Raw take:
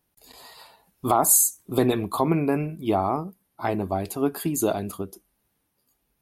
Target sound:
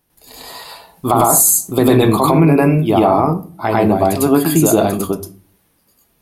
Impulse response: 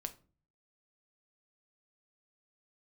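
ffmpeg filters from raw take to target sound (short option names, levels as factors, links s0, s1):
-filter_complex "[0:a]asplit=2[s0][s1];[1:a]atrim=start_sample=2205,adelay=101[s2];[s1][s2]afir=irnorm=-1:irlink=0,volume=2.37[s3];[s0][s3]amix=inputs=2:normalize=0,alimiter=level_in=2.66:limit=0.891:release=50:level=0:latency=1,volume=0.891"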